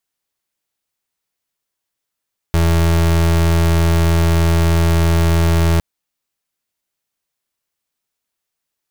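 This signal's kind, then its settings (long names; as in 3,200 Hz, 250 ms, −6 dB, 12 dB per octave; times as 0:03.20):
pulse wave 83.2 Hz, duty 33% −13 dBFS 3.26 s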